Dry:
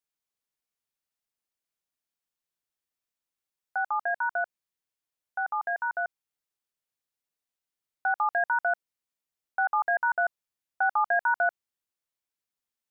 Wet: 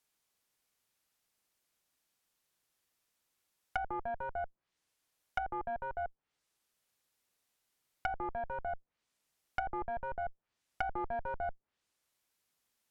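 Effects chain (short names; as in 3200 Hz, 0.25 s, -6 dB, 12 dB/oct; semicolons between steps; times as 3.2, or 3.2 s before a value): one-sided clip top -33 dBFS, bottom -18.5 dBFS; limiter -30 dBFS, peak gain reduction 11 dB; treble ducked by the level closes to 580 Hz, closed at -40 dBFS; gain +9.5 dB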